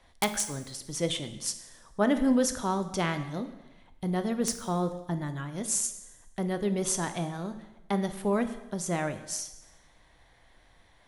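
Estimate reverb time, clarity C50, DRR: 1.0 s, 12.0 dB, 9.0 dB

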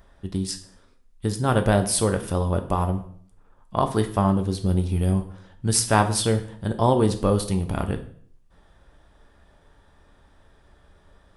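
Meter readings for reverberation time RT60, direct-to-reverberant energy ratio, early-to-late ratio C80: 0.55 s, 6.0 dB, 15.5 dB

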